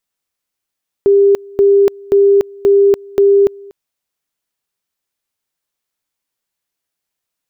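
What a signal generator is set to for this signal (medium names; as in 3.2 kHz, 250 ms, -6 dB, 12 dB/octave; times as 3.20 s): two-level tone 399 Hz -5.5 dBFS, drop 25.5 dB, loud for 0.29 s, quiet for 0.24 s, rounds 5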